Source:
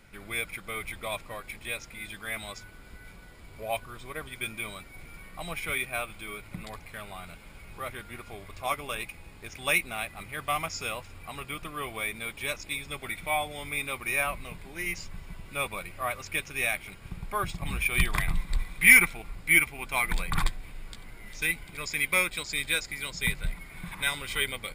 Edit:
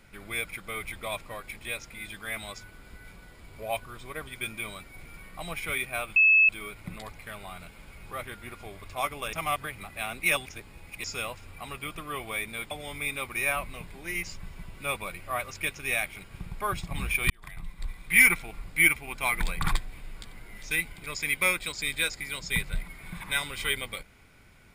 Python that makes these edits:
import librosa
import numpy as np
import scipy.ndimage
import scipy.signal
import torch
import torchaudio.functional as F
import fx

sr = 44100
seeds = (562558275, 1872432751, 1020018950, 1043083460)

y = fx.edit(x, sr, fx.insert_tone(at_s=6.16, length_s=0.33, hz=2600.0, db=-15.5),
    fx.reverse_span(start_s=9.0, length_s=1.71),
    fx.cut(start_s=12.38, length_s=1.04),
    fx.fade_in_span(start_s=18.01, length_s=1.21), tone=tone)